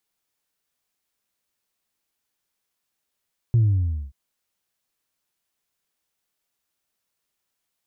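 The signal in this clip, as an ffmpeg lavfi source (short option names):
-f lavfi -i "aevalsrc='0.2*clip((0.58-t)/0.56,0,1)*tanh(1*sin(2*PI*120*0.58/log(65/120)*(exp(log(65/120)*t/0.58)-1)))/tanh(1)':d=0.58:s=44100"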